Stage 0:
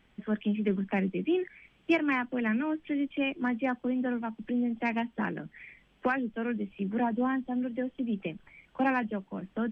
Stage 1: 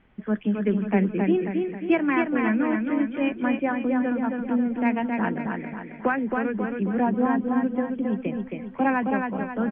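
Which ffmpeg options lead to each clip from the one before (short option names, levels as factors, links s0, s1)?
-filter_complex "[0:a]lowpass=2000,asplit=2[s0][s1];[s1]aecho=0:1:269|538|807|1076|1345|1614:0.631|0.303|0.145|0.0698|0.0335|0.0161[s2];[s0][s2]amix=inputs=2:normalize=0,volume=1.78"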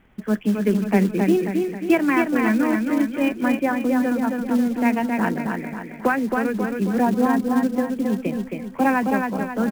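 -af "acrusher=bits=6:mode=log:mix=0:aa=0.000001,volume=1.5"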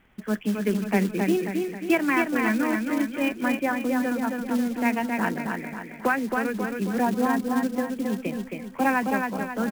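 -af "tiltshelf=f=970:g=-3,volume=0.75"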